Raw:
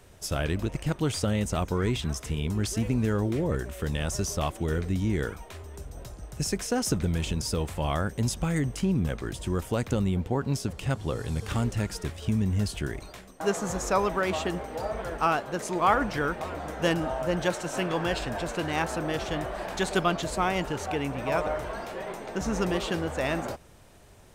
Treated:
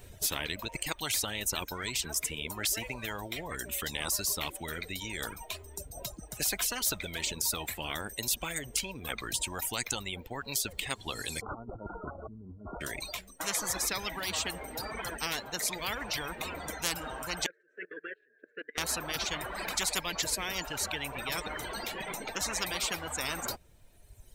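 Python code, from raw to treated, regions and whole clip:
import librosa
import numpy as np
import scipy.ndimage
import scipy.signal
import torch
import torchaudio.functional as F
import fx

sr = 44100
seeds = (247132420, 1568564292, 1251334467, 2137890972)

y = fx.chain(x, sr, fx.brickwall_lowpass(high_hz=1500.0),
    fx.over_compress(threshold_db=-31.0, ratio=-0.5), at=(11.41, 12.81))
y = fx.chain(y, sr, fx.double_bandpass(hz=850.0, octaves=2.0),
    fx.level_steps(step_db=20), at=(17.46, 18.78))
y = fx.bin_expand(y, sr, power=1.5)
y = fx.dereverb_blind(y, sr, rt60_s=1.6)
y = fx.spectral_comp(y, sr, ratio=10.0)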